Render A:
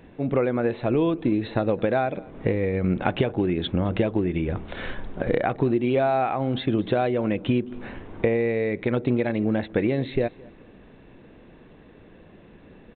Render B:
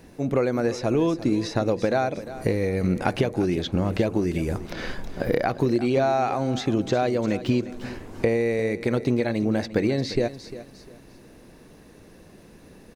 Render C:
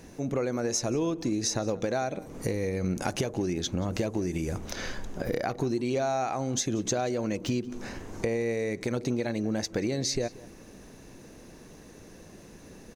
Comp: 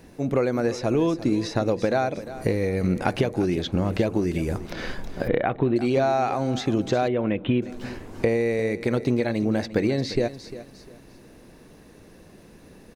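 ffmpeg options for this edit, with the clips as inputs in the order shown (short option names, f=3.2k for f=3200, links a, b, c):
-filter_complex "[0:a]asplit=2[a][b];[1:a]asplit=3[c][d][e];[c]atrim=end=5.282[f];[a]atrim=start=5.278:end=5.762[g];[d]atrim=start=5.758:end=7.082[h];[b]atrim=start=7.078:end=7.622[i];[e]atrim=start=7.618[j];[f][g]acrossfade=d=0.004:c1=hsin:c2=hsin[k];[k][h]acrossfade=d=0.004:c1=hsin:c2=hsin[l];[l][i]acrossfade=d=0.004:c1=hsin:c2=hsin[m];[m][j]acrossfade=d=0.004:c1=hsin:c2=hsin"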